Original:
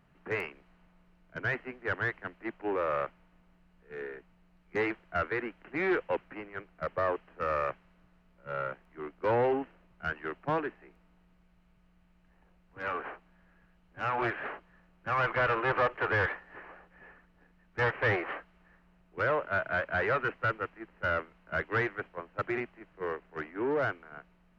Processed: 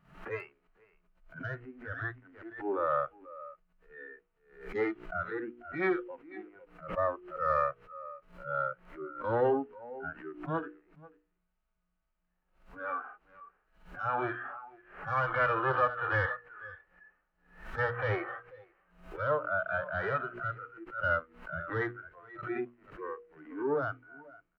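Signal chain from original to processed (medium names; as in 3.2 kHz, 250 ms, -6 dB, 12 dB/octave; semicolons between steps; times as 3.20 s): peaking EQ 1.3 kHz +5 dB 0.45 oct; on a send: delay 489 ms -15 dB; on the sum: wow and flutter 17 cents; harmonic-percussive split percussive -17 dB; spectral noise reduction 15 dB; hum notches 60/120/180/240/300/360/420/480 Hz; swell ahead of each attack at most 110 dB/s; trim +1.5 dB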